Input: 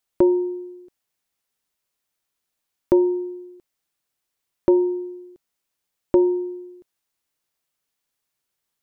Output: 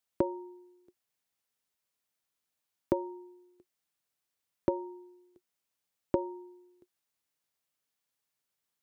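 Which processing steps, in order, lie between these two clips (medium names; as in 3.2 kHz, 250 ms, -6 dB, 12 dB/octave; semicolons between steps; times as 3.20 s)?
high-pass 59 Hz; band-stop 360 Hz, Q 12; trim -5.5 dB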